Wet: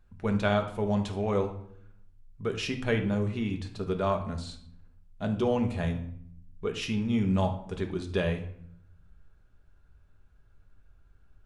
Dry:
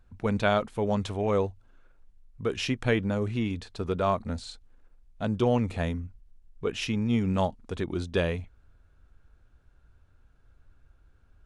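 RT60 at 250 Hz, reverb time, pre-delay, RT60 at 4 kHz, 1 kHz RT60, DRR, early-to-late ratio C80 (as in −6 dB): 1.0 s, 0.65 s, 5 ms, 0.45 s, 0.60 s, 4.0 dB, 14.0 dB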